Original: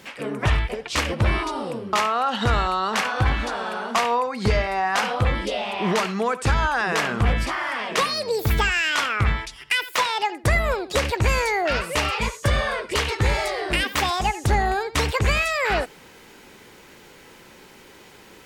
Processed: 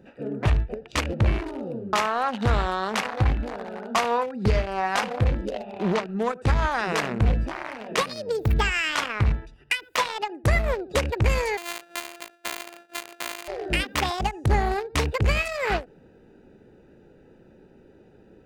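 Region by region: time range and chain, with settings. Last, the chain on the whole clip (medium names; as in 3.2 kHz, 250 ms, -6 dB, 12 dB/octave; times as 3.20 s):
5.51–6.17 s: transient shaper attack +2 dB, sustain -8 dB + distance through air 99 m + loudspeaker Doppler distortion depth 0.15 ms
11.57–13.48 s: sorted samples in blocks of 128 samples + high-pass 1.2 kHz + band-stop 5.4 kHz
whole clip: local Wiener filter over 41 samples; endings held to a fixed fall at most 260 dB/s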